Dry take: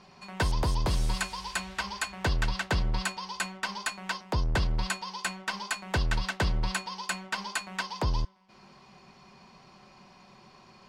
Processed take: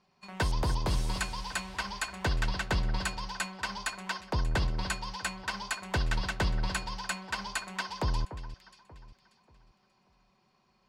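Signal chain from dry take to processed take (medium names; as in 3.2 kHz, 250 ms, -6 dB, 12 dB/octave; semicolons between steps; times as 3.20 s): gate -46 dBFS, range -14 dB; echo whose repeats swap between lows and highs 293 ms, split 1.9 kHz, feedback 55%, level -11.5 dB; trim -2 dB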